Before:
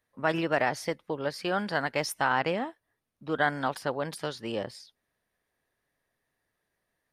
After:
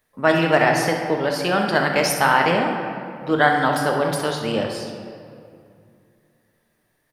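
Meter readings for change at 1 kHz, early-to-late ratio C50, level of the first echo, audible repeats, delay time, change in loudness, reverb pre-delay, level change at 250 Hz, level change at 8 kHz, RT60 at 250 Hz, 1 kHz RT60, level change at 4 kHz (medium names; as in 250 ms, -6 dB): +10.5 dB, 3.5 dB, -10.0 dB, 1, 66 ms, +10.0 dB, 5 ms, +11.0 dB, +12.0 dB, 2.9 s, 2.3 s, +10.5 dB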